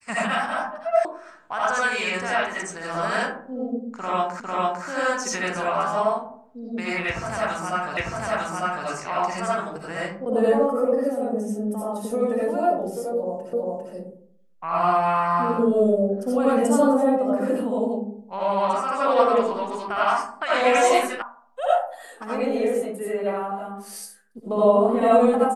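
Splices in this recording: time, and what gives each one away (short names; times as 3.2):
1.05 sound cut off
4.4 repeat of the last 0.45 s
7.97 repeat of the last 0.9 s
13.53 repeat of the last 0.4 s
21.22 sound cut off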